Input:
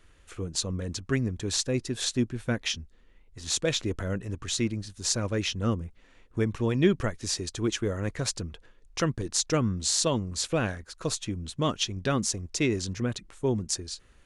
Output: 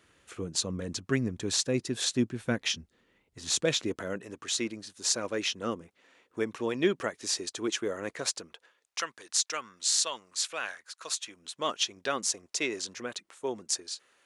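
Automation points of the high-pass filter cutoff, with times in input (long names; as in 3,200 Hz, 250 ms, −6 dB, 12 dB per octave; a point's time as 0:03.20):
0:03.61 140 Hz
0:04.27 340 Hz
0:08.12 340 Hz
0:09.09 1,100 Hz
0:11.15 1,100 Hz
0:11.73 510 Hz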